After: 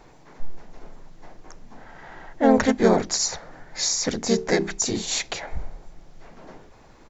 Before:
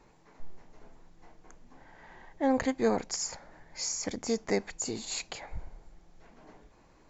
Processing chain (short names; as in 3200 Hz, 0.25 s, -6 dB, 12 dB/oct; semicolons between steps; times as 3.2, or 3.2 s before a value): notches 50/100/150/200/250/300/350/400/450 Hz; harmoniser -3 st -2 dB; gain +8 dB